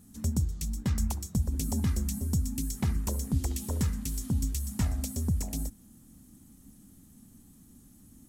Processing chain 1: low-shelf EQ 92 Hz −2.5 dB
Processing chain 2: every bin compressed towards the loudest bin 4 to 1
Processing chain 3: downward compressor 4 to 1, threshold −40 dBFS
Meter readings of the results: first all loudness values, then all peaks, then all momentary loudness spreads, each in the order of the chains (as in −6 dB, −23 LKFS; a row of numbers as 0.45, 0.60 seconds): −32.5, −36.0, −43.0 LKFS; −17.5, −16.5, −25.5 dBFS; 3, 12, 13 LU